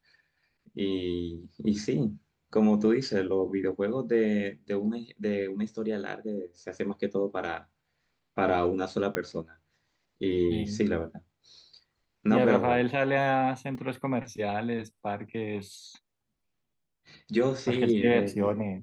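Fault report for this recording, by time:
9.15 s: pop -14 dBFS
13.75 s: dropout 2.3 ms

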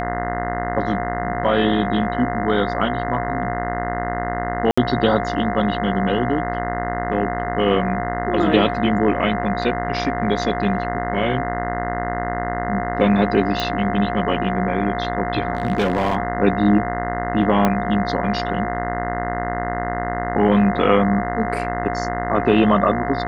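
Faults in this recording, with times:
buzz 60 Hz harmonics 35 -26 dBFS
whine 710 Hz -25 dBFS
4.71–4.78 s: dropout 65 ms
13.60 s: pop
15.55–16.17 s: clipped -14 dBFS
17.65 s: pop -5 dBFS

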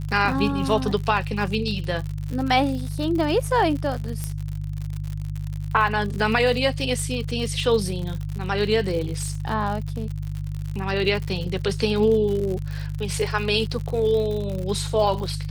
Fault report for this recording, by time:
crackle 81 per s -29 dBFS
hum 50 Hz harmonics 3 -29 dBFS
4.24 s: pop -14 dBFS

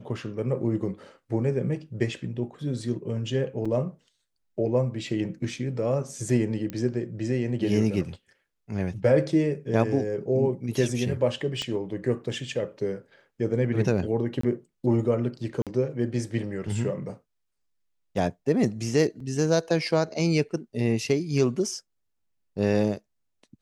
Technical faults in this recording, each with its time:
3.65–3.66 s: dropout 5.1 ms
6.70 s: pop -19 dBFS
11.62 s: pop -19 dBFS
14.41–14.43 s: dropout 24 ms
15.62–15.67 s: dropout 47 ms
19.20 s: dropout 3.7 ms

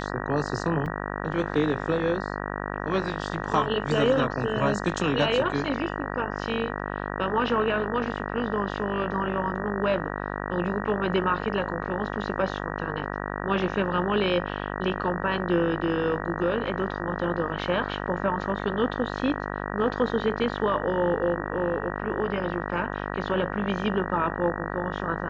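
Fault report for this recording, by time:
buzz 50 Hz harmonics 38 -32 dBFS
0.86 s: dropout 4.4 ms

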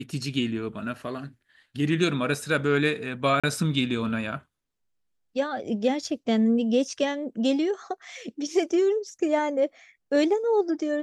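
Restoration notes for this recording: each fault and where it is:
3.40–3.44 s: dropout 36 ms

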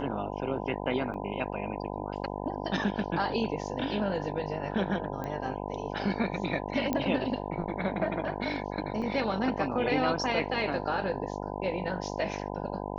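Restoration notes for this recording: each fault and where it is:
buzz 50 Hz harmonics 20 -36 dBFS
1.14 s: dropout 3.6 ms
5.24 s: pop -23 dBFS
6.93 s: pop -15 dBFS
9.02 s: dropout 3.8 ms

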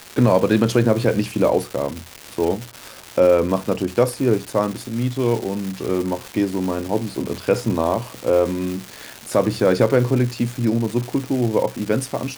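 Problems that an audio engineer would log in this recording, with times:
crackle 510 per s -25 dBFS

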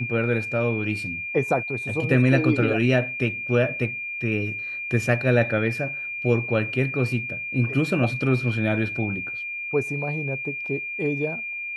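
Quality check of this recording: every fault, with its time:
whine 2.4 kHz -29 dBFS

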